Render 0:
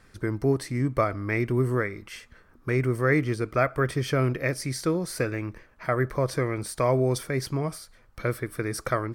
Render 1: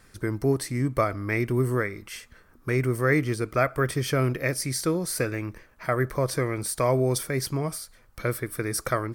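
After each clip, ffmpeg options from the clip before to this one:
ffmpeg -i in.wav -af "highshelf=frequency=6900:gain=10.5" out.wav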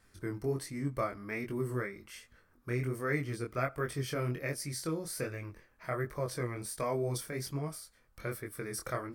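ffmpeg -i in.wav -af "flanger=delay=20:depth=5.1:speed=1.3,volume=-7dB" out.wav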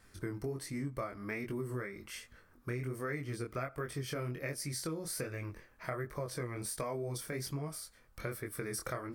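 ffmpeg -i in.wav -af "acompressor=threshold=-39dB:ratio=5,volume=3.5dB" out.wav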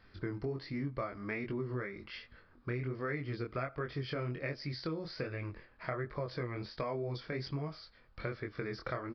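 ffmpeg -i in.wav -af "aresample=11025,aresample=44100,volume=1dB" out.wav

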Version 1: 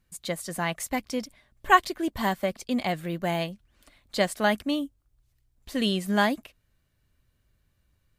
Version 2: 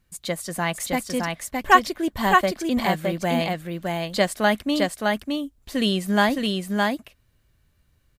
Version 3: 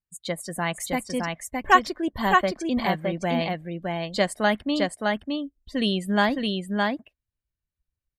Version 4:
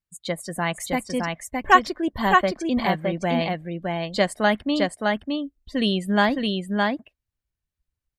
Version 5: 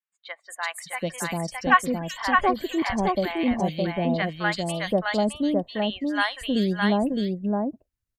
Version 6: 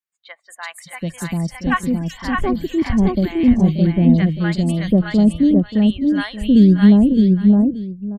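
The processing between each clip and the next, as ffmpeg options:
ffmpeg -i in.wav -af "aecho=1:1:614:0.708,volume=3.5dB" out.wav
ffmpeg -i in.wav -af "afftdn=noise_reduction=25:noise_floor=-40,volume=-2dB" out.wav
ffmpeg -i in.wav -af "highshelf=frequency=6800:gain=-4,volume=2dB" out.wav
ffmpeg -i in.wav -filter_complex "[0:a]acrossover=split=830|3200[link_01][link_02][link_03];[link_03]adelay=380[link_04];[link_01]adelay=740[link_05];[link_05][link_02][link_04]amix=inputs=3:normalize=0" out.wav
ffmpeg -i in.wav -af "aecho=1:1:581:0.2,asubboost=boost=11.5:cutoff=240,volume=-1dB" out.wav

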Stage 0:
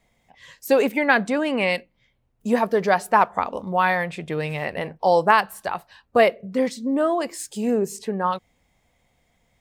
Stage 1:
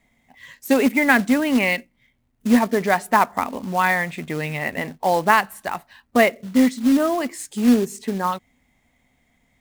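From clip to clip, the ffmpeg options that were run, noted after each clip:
ffmpeg -i in.wav -af "equalizer=frequency=250:width_type=o:width=0.33:gain=11,equalizer=frequency=500:width_type=o:width=0.33:gain=-5,equalizer=frequency=2000:width_type=o:width=0.33:gain=6,equalizer=frequency=5000:width_type=o:width=0.33:gain=-4,acrusher=bits=4:mode=log:mix=0:aa=0.000001" out.wav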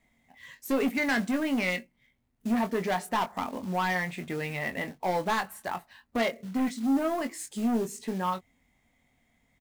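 ffmpeg -i in.wav -filter_complex "[0:a]asoftclip=type=tanh:threshold=-17dB,asplit=2[link_01][link_02];[link_02]adelay=22,volume=-8dB[link_03];[link_01][link_03]amix=inputs=2:normalize=0,volume=-6dB" out.wav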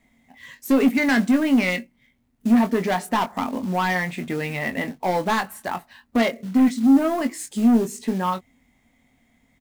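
ffmpeg -i in.wav -af "equalizer=frequency=250:width_type=o:width=0.47:gain=6.5,volume=5.5dB" out.wav

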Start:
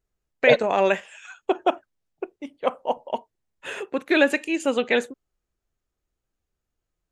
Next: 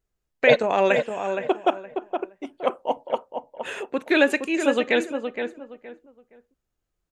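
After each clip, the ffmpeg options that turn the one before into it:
ffmpeg -i in.wav -filter_complex "[0:a]asplit=2[link_01][link_02];[link_02]adelay=468,lowpass=frequency=1900:poles=1,volume=-6.5dB,asplit=2[link_03][link_04];[link_04]adelay=468,lowpass=frequency=1900:poles=1,volume=0.26,asplit=2[link_05][link_06];[link_06]adelay=468,lowpass=frequency=1900:poles=1,volume=0.26[link_07];[link_01][link_03][link_05][link_07]amix=inputs=4:normalize=0" out.wav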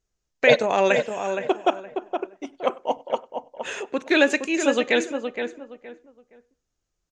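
ffmpeg -i in.wav -filter_complex "[0:a]lowpass=frequency=6300:width_type=q:width=2.9,asplit=2[link_01][link_02];[link_02]adelay=98,lowpass=frequency=3500:poles=1,volume=-24dB,asplit=2[link_03][link_04];[link_04]adelay=98,lowpass=frequency=3500:poles=1,volume=0.39[link_05];[link_01][link_03][link_05]amix=inputs=3:normalize=0" out.wav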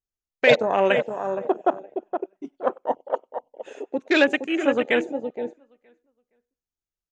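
ffmpeg -i in.wav -af "afwtdn=0.0447" out.wav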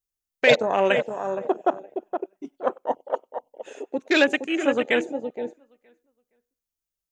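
ffmpeg -i in.wav -af "highshelf=frequency=6200:gain=10,volume=-1dB" out.wav

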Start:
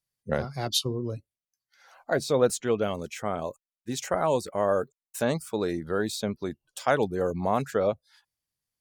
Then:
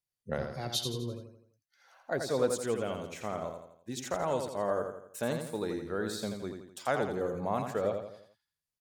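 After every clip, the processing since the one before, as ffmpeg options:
ffmpeg -i in.wav -af "aecho=1:1:84|168|252|336|420:0.501|0.226|0.101|0.0457|0.0206,volume=-7dB" out.wav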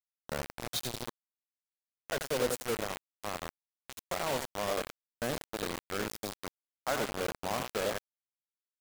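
ffmpeg -i in.wav -af "acrusher=bits=4:mix=0:aa=0.000001,volume=-3dB" out.wav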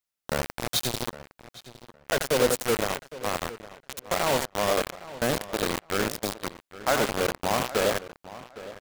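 ffmpeg -i in.wav -filter_complex "[0:a]asplit=2[link_01][link_02];[link_02]adelay=811,lowpass=frequency=3900:poles=1,volume=-16dB,asplit=2[link_03][link_04];[link_04]adelay=811,lowpass=frequency=3900:poles=1,volume=0.21[link_05];[link_01][link_03][link_05]amix=inputs=3:normalize=0,volume=8.5dB" out.wav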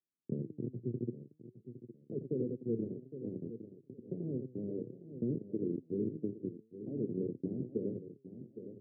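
ffmpeg -i in.wav -af "flanger=delay=2.7:depth=6.7:regen=90:speed=0.53:shape=triangular,acompressor=threshold=-30dB:ratio=6,asuperpass=centerf=210:order=12:qfactor=0.69,volume=6dB" out.wav

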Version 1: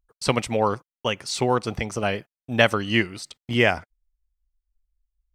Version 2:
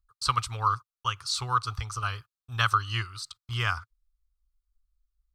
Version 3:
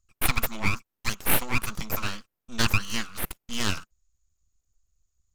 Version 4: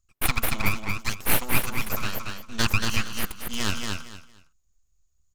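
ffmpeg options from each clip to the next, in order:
ffmpeg -i in.wav -af "firequalizer=gain_entry='entry(110,0);entry(190,-28);entry(410,-21);entry(600,-26);entry(1200,8);entry(1900,-14);entry(4100,2);entry(5800,-3)':delay=0.05:min_phase=1" out.wav
ffmpeg -i in.wav -af "lowpass=frequency=6800:width_type=q:width=15,aeval=exprs='abs(val(0))':channel_layout=same,volume=2.5dB" out.wav
ffmpeg -i in.wav -af "aecho=1:1:230|460|690:0.631|0.145|0.0334" out.wav

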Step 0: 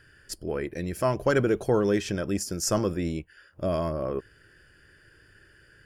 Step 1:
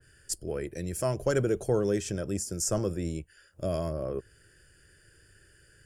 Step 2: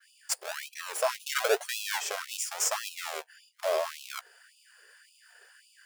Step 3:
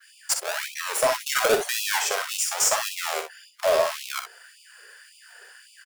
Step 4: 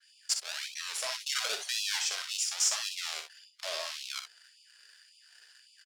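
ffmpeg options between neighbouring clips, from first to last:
ffmpeg -i in.wav -filter_complex "[0:a]equalizer=frequency=250:width_type=o:width=1:gain=-6,equalizer=frequency=1000:width_type=o:width=1:gain=-8,equalizer=frequency=2000:width_type=o:width=1:gain=-4,equalizer=frequency=4000:width_type=o:width=1:gain=-4,equalizer=frequency=8000:width_type=o:width=1:gain=11,acrossover=split=100|2500[link_01][link_02][link_03];[link_03]alimiter=limit=-17dB:level=0:latency=1:release=234[link_04];[link_01][link_02][link_04]amix=inputs=3:normalize=0,adynamicequalizer=threshold=0.00562:dfrequency=1700:dqfactor=0.7:tfrequency=1700:tqfactor=0.7:attack=5:release=100:ratio=0.375:range=2.5:mode=cutabove:tftype=highshelf" out.wav
ffmpeg -i in.wav -filter_complex "[0:a]acrossover=split=460|5600[link_01][link_02][link_03];[link_01]acrusher=samples=42:mix=1:aa=0.000001:lfo=1:lforange=25.2:lforate=0.98[link_04];[link_03]aeval=exprs='max(val(0),0)':channel_layout=same[link_05];[link_04][link_02][link_05]amix=inputs=3:normalize=0,afftfilt=real='re*gte(b*sr/1024,360*pow(2500/360,0.5+0.5*sin(2*PI*1.8*pts/sr)))':imag='im*gte(b*sr/1024,360*pow(2500/360,0.5+0.5*sin(2*PI*1.8*pts/sr)))':win_size=1024:overlap=0.75,volume=6dB" out.wav
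ffmpeg -i in.wav -filter_complex "[0:a]acrossover=split=550|2200|4200[link_01][link_02][link_03][link_04];[link_03]alimiter=level_in=11dB:limit=-24dB:level=0:latency=1,volume=-11dB[link_05];[link_01][link_02][link_05][link_04]amix=inputs=4:normalize=0,volume=23.5dB,asoftclip=hard,volume=-23.5dB,aecho=1:1:44|61:0.237|0.376,volume=8dB" out.wav
ffmpeg -i in.wav -filter_complex "[0:a]asplit=2[link_01][link_02];[link_02]acrusher=bits=6:mix=0:aa=0.000001,volume=-6dB[link_03];[link_01][link_03]amix=inputs=2:normalize=0,bandpass=frequency=4400:width_type=q:width=1.4:csg=0,volume=-4.5dB" out.wav

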